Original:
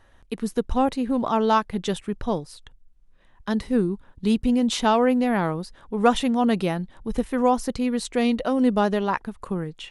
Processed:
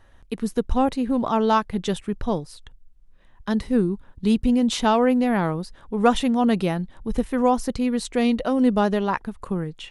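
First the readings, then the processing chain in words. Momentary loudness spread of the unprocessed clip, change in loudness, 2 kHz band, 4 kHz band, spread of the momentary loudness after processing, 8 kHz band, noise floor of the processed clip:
10 LU, +1.0 dB, 0.0 dB, 0.0 dB, 10 LU, 0.0 dB, -52 dBFS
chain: low shelf 180 Hz +4 dB

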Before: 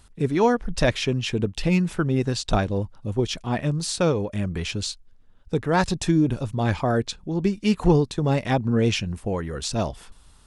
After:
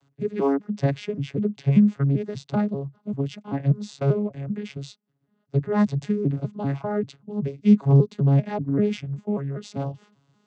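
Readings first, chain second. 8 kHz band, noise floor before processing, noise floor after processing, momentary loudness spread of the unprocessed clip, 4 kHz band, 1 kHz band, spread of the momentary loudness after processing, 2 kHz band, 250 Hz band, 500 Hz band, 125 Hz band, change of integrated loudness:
under -15 dB, -52 dBFS, -71 dBFS, 7 LU, -14.0 dB, -7.0 dB, 13 LU, -10.5 dB, +1.0 dB, -3.0 dB, +2.0 dB, 0.0 dB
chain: arpeggiated vocoder bare fifth, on C#3, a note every 0.195 s; gain +1 dB

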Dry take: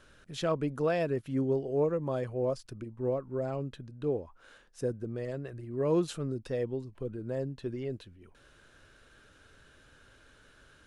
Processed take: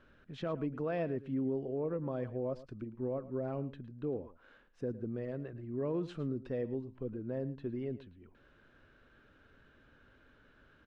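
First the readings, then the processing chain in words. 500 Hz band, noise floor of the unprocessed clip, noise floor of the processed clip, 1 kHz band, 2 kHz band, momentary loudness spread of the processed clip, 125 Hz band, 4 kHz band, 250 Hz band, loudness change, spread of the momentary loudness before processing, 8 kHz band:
-6.0 dB, -61 dBFS, -65 dBFS, -7.0 dB, -7.0 dB, 7 LU, -4.5 dB, under -10 dB, -3.0 dB, -5.0 dB, 10 LU, under -20 dB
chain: LPF 2600 Hz 12 dB/oct; bell 240 Hz +5.5 dB 0.79 oct; limiter -23.5 dBFS, peak gain reduction 7 dB; on a send: echo 0.11 s -16.5 dB; on the sum: gain -4.5 dB

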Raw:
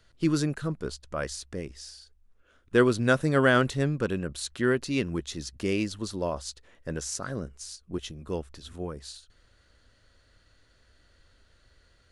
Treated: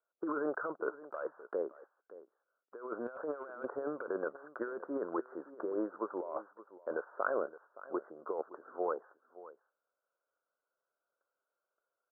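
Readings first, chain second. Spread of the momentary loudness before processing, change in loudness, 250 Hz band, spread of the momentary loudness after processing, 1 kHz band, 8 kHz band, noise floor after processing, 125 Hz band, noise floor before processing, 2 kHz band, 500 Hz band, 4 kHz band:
18 LU, -11.0 dB, -13.0 dB, 18 LU, -6.5 dB, under -40 dB, under -85 dBFS, under -30 dB, -63 dBFS, -14.0 dB, -8.0 dB, under -40 dB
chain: steep low-pass 1500 Hz 96 dB/oct; gate -54 dBFS, range -26 dB; HPF 470 Hz 24 dB/oct; negative-ratio compressor -40 dBFS, ratio -1; echo 0.569 s -17 dB; gain +2 dB

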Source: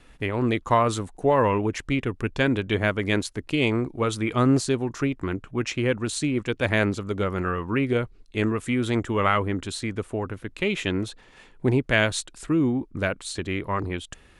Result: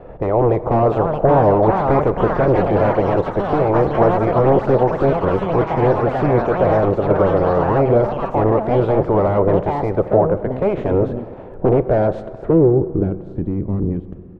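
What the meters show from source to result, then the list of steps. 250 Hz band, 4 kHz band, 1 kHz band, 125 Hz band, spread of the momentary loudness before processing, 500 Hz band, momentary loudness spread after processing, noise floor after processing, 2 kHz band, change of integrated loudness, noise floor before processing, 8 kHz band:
+5.5 dB, under -10 dB, +10.0 dB, +8.0 dB, 9 LU, +12.0 dB, 7 LU, -34 dBFS, -3.5 dB, +8.5 dB, -53 dBFS, under -20 dB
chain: spectral limiter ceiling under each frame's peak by 14 dB; bell 250 Hz -12 dB 0.49 oct; in parallel at -2 dB: compressor, threshold -29 dBFS, peak gain reduction 13.5 dB; on the sum: sine folder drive 14 dB, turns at -3.5 dBFS; low-pass sweep 610 Hz -> 250 Hz, 12.21–13.38; on a send: echo 0.204 s -22 dB; on the sum: plate-style reverb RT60 2.6 s, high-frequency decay 0.65×, DRR 14 dB; echoes that change speed 0.752 s, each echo +5 st, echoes 3, each echo -6 dB; gain -7.5 dB

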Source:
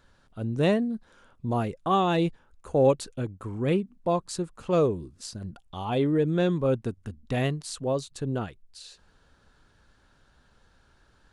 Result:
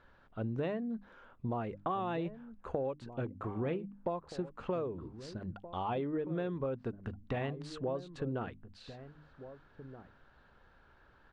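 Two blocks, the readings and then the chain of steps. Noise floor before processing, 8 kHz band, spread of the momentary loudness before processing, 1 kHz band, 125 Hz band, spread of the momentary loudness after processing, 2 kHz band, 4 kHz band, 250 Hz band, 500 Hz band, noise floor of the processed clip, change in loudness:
-63 dBFS, under -20 dB, 15 LU, -9.0 dB, -10.5 dB, 16 LU, -9.5 dB, -14.5 dB, -10.5 dB, -11.0 dB, -64 dBFS, -11.0 dB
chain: LPF 2200 Hz 12 dB/oct; low shelf 340 Hz -5.5 dB; notches 50/100/150/200/250/300 Hz; compressor 16:1, threshold -34 dBFS, peak gain reduction 17.5 dB; outdoor echo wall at 270 m, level -13 dB; gain +2 dB

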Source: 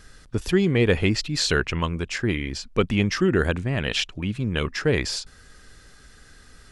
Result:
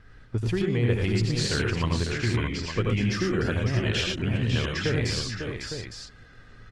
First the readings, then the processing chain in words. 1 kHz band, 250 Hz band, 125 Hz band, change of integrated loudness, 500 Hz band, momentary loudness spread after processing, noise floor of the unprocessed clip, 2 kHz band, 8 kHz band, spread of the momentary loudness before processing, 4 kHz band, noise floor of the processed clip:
-3.5 dB, -3.5 dB, +1.0 dB, -3.0 dB, -4.5 dB, 9 LU, -51 dBFS, -3.5 dB, -3.0 dB, 8 LU, -2.5 dB, -51 dBFS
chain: low-pass opened by the level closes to 2600 Hz, open at -18.5 dBFS; bell 110 Hz +12 dB 0.2 oct; compressor 4:1, threshold -21 dBFS, peak gain reduction 8 dB; tapped delay 84/109/117/550/617/859 ms -4/-6/-9.5/-7/-8.5/-8.5 dB; gain -3 dB; Opus 24 kbps 48000 Hz

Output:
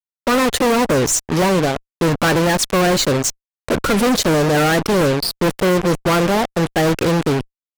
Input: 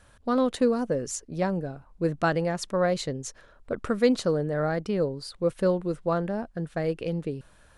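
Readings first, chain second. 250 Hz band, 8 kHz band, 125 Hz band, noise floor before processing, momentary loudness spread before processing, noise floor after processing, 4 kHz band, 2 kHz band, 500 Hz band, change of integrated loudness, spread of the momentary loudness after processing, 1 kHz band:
+10.5 dB, +18.0 dB, +11.5 dB, -57 dBFS, 10 LU, under -85 dBFS, +18.0 dB, +15.0 dB, +9.0 dB, +11.0 dB, 5 LU, +13.5 dB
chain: bin magnitudes rounded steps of 30 dB; fuzz box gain 45 dB, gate -40 dBFS

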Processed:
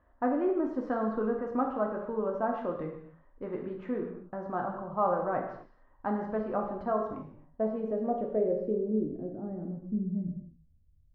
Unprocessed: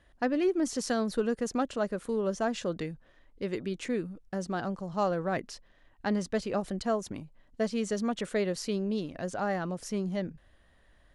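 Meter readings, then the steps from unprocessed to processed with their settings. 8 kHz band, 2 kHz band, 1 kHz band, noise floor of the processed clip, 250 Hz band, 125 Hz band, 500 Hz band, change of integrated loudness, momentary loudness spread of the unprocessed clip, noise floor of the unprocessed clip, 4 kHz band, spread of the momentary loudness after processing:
under -35 dB, -6.5 dB, +2.5 dB, -63 dBFS, -1.0 dB, -2.5 dB, +0.5 dB, -0.5 dB, 8 LU, -63 dBFS, under -25 dB, 10 LU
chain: high shelf 6400 Hz -10 dB; low-pass sweep 1100 Hz -> 110 Hz, 7.24–11.05; non-linear reverb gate 0.3 s falling, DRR 0.5 dB; gain -4.5 dB

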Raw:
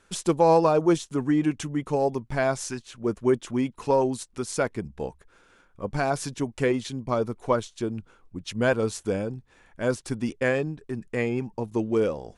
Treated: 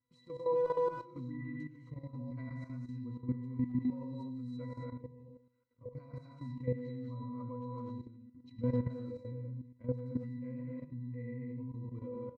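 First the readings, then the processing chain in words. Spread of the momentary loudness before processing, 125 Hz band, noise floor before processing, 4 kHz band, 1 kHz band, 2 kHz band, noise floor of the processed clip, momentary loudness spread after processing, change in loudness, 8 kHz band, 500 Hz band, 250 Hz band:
12 LU, -7.0 dB, -60 dBFS, under -25 dB, -17.5 dB, -24.0 dB, -66 dBFS, 14 LU, -13.5 dB, under -40 dB, -15.0 dB, -12.0 dB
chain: bell 650 Hz -8.5 dB 1.3 oct; octave resonator B, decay 0.57 s; speakerphone echo 90 ms, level -9 dB; non-linear reverb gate 0.29 s rising, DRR -0.5 dB; level quantiser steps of 12 dB; gain +6.5 dB

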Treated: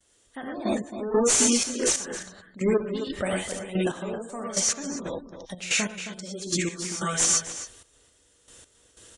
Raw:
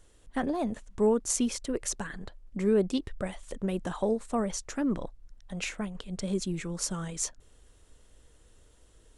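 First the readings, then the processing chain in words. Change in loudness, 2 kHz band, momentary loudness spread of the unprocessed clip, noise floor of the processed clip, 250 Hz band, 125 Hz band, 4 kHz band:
+5.5 dB, +9.0 dB, 11 LU, -63 dBFS, +1.0 dB, +1.5 dB, +11.0 dB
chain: tracing distortion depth 0.092 ms; non-linear reverb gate 0.14 s rising, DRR -1.5 dB; gate with hold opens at -51 dBFS; HPF 170 Hz 6 dB/oct; high shelf 2300 Hz +9 dB; soft clip -21 dBFS, distortion -12 dB; step gate "....x..xxx.x" 92 bpm -12 dB; outdoor echo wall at 46 m, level -10 dB; spectral gate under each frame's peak -30 dB strong; downsampling 22050 Hz; gain +5.5 dB

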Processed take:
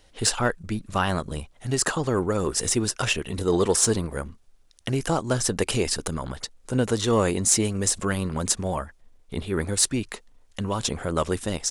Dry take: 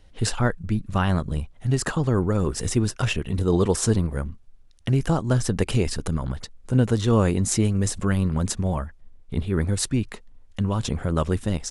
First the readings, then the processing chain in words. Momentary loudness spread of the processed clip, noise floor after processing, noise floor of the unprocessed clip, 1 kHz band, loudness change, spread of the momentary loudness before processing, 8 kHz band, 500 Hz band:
14 LU, -56 dBFS, -50 dBFS, +2.0 dB, -0.5 dB, 10 LU, +6.5 dB, +1.0 dB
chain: tone controls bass -10 dB, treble +5 dB; in parallel at -6 dB: soft clip -17.5 dBFS, distortion -16 dB; on the sum: gain -1 dB

